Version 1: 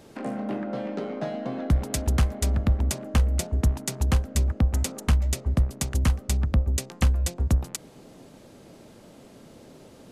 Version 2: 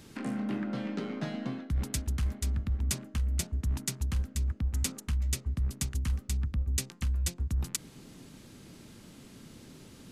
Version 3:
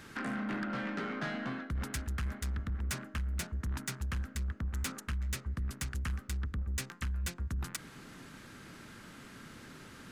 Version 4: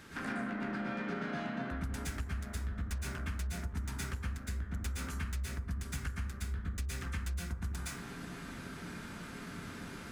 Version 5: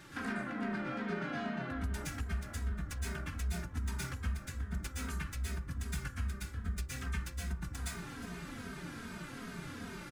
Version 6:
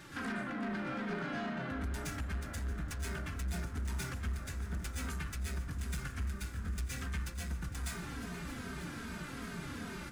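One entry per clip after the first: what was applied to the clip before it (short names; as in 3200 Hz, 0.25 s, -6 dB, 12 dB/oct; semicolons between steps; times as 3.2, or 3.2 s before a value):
bell 610 Hz -14 dB 1.4 oct; reverse; compressor 10:1, threshold -29 dBFS, peak gain reduction 13 dB; reverse; gain +2 dB
bell 1500 Hz +14 dB 1.3 oct; soft clip -28.5 dBFS, distortion -13 dB; gain -2 dB
plate-style reverb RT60 0.58 s, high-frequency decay 0.5×, pre-delay 0.105 s, DRR -7 dB; compressor, threshold -32 dBFS, peak gain reduction 11 dB; gain -2.5 dB
feedback echo 0.36 s, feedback 56%, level -18 dB; endless flanger 2.9 ms -2.5 Hz; gain +3 dB
soft clip -34 dBFS, distortion -14 dB; on a send: multi-head echo 0.314 s, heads second and third, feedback 69%, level -16.5 dB; on the sum: gain +2 dB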